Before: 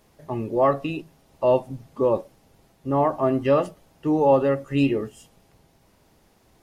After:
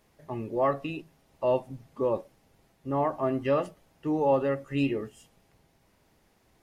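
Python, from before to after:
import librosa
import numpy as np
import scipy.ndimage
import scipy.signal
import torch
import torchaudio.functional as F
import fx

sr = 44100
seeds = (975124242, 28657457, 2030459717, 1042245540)

y = fx.peak_eq(x, sr, hz=2000.0, db=3.5, octaves=0.95)
y = F.gain(torch.from_numpy(y), -6.5).numpy()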